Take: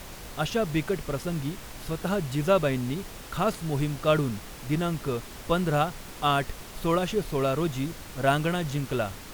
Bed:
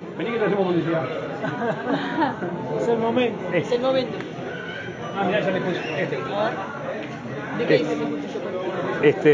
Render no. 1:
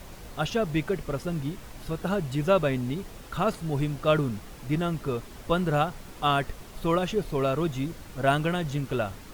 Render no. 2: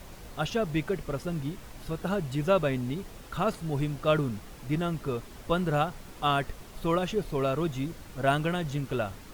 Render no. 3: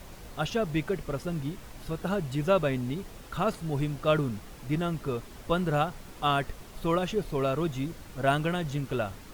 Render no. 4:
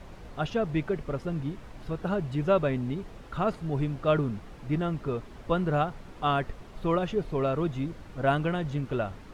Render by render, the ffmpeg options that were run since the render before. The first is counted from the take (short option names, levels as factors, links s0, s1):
-af "afftdn=nr=6:nf=-43"
-af "volume=0.794"
-af anull
-af "aemphasis=mode=reproduction:type=75fm"